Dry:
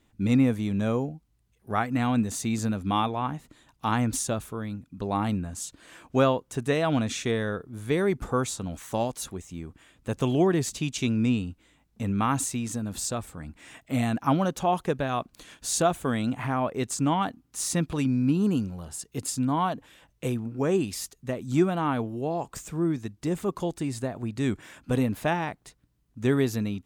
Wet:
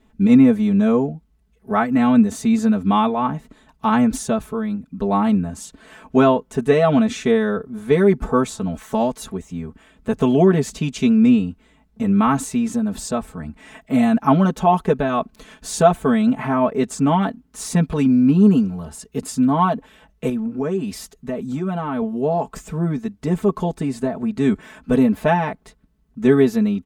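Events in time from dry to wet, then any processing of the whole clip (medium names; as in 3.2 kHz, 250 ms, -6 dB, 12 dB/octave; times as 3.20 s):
20.29–22.02 s: compression 3:1, threshold -30 dBFS
whole clip: treble shelf 2.5 kHz -11 dB; comb 4.6 ms, depth 99%; trim +6.5 dB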